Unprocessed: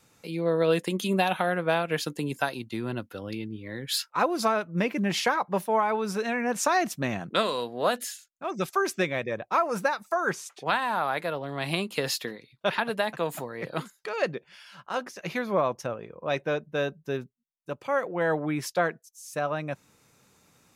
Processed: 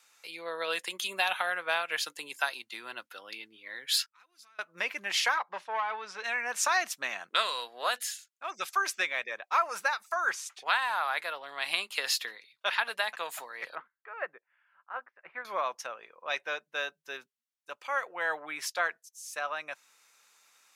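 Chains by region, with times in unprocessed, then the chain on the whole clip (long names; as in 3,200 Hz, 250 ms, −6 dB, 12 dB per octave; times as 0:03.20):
0:04.06–0:04.59: downward compressor 2 to 1, threshold −39 dBFS + guitar amp tone stack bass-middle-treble 6-0-2
0:05.38–0:06.24: tube saturation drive 17 dB, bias 0.35 + high-frequency loss of the air 130 metres
0:13.75–0:15.45: low-pass filter 1,800 Hz 24 dB per octave + expander for the loud parts, over −51 dBFS
whole clip: high-pass filter 1,200 Hz 12 dB per octave; high-shelf EQ 11,000 Hz −5.5 dB; level +2 dB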